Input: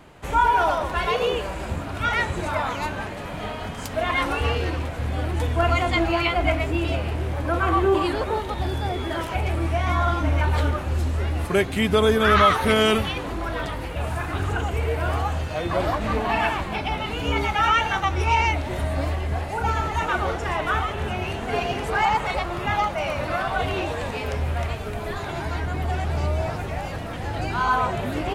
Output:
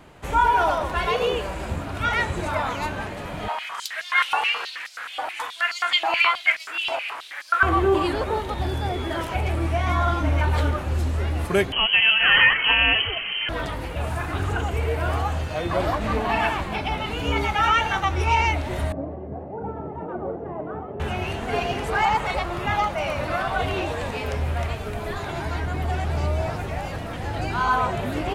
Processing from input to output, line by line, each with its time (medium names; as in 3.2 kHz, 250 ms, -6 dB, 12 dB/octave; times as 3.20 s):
3.48–7.63 s: step-sequenced high-pass 9.4 Hz 870–4900 Hz
11.72–13.49 s: frequency inversion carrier 3.1 kHz
18.92–21.00 s: Butterworth band-pass 290 Hz, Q 0.62